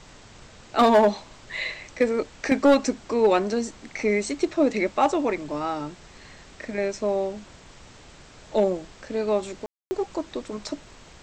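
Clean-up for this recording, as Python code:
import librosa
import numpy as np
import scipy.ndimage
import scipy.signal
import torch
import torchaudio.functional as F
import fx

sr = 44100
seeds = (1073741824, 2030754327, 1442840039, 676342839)

y = fx.fix_declip(x, sr, threshold_db=-11.5)
y = fx.fix_ambience(y, sr, seeds[0], print_start_s=7.87, print_end_s=8.37, start_s=9.66, end_s=9.91)
y = fx.noise_reduce(y, sr, print_start_s=7.87, print_end_s=8.37, reduce_db=19.0)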